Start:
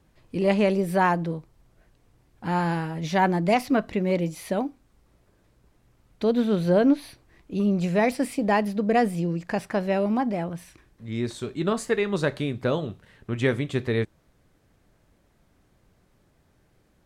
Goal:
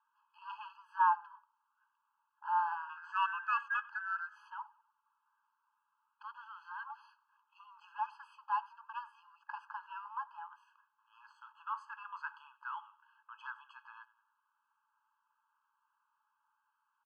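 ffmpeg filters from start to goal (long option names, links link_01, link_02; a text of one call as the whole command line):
ffmpeg -i in.wav -filter_complex "[0:a]lowshelf=frequency=110:gain=6,asettb=1/sr,asplit=3[link_01][link_02][link_03];[link_01]atrim=end=2.894[link_04];[link_02]atrim=start=2.89:end=4.29,asetpts=PTS-STARTPTS,afade=type=in:duration=0.004:curve=qsin,afade=type=out:start_time=1.396:duration=0.004:curve=qsin,aeval=exprs='val(0)*sin(2*PI*1900*n/s)':channel_layout=same[link_05];[link_03]atrim=start=4.286[link_06];[link_04][link_05]acrossfade=duration=0.004:curve1=hsin:curve2=qsin[link_07];[link_07][link_06]acrossfade=duration=0.004:curve1=qsin:curve2=hsin,asettb=1/sr,asplit=3[link_08][link_09][link_10];[link_08]atrim=end=11.134[link_11];[link_09]atrim=start=11.13:end=11.81,asetpts=PTS-STARTPTS,afade=type=in:duration=0.004:curve=qsin,afade=type=out:start_time=0.676:duration=0.004:curve=qsin,aeval=exprs='sgn(val(0))*max(abs(val(0))-0.00398,0)':channel_layout=same[link_12];[link_10]atrim=start=11.806[link_13];[link_11][link_12]acrossfade=duration=0.004:curve1=hsin:curve2=qsin[link_14];[link_14][link_13]acrossfade=duration=0.004:curve1=qsin:curve2=hsin,asplit=2[link_15][link_16];[link_16]asplit=3[link_17][link_18][link_19];[link_17]adelay=95,afreqshift=-34,volume=-23dB[link_20];[link_18]adelay=190,afreqshift=-68,volume=-29.4dB[link_21];[link_19]adelay=285,afreqshift=-102,volume=-35.8dB[link_22];[link_20][link_21][link_22]amix=inputs=3:normalize=0[link_23];[link_15][link_23]amix=inputs=2:normalize=0,asoftclip=type=tanh:threshold=-13.5dB,lowpass=1100,afftfilt=real='re*eq(mod(floor(b*sr/1024/840),2),1)':imag='im*eq(mod(floor(b*sr/1024/840),2),1)':win_size=1024:overlap=0.75" out.wav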